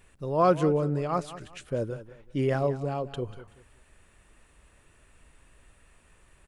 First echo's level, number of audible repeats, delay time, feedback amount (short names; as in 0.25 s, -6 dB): -15.0 dB, 2, 0.19 s, 29%